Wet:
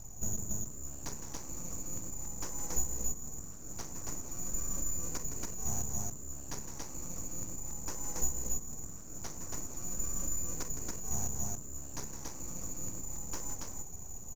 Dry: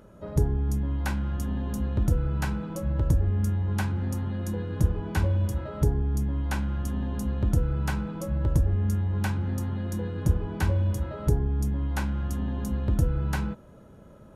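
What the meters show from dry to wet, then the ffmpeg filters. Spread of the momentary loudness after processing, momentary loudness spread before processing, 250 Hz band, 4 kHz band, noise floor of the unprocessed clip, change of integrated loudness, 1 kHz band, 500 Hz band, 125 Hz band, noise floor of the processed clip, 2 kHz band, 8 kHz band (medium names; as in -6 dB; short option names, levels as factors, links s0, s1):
8 LU, 5 LU, -16.0 dB, -5.0 dB, -50 dBFS, -10.5 dB, -10.5 dB, -14.0 dB, -21.0 dB, -44 dBFS, -15.5 dB, +12.0 dB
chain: -filter_complex "[0:a]acompressor=threshold=0.0316:ratio=6,aresample=11025,asoftclip=type=tanh:threshold=0.0237,aresample=44100,highpass=f=520:t=q:w=4.9,lowpass=f=3400:t=q:w=0.5098,lowpass=f=3400:t=q:w=0.6013,lowpass=f=3400:t=q:w=0.9,lowpass=f=3400:t=q:w=2.563,afreqshift=-4000,asplit=2[s0][s1];[s1]aecho=0:1:163.3|279.9:0.282|0.794[s2];[s0][s2]amix=inputs=2:normalize=0,aeval=exprs='abs(val(0))':c=same,volume=1.26"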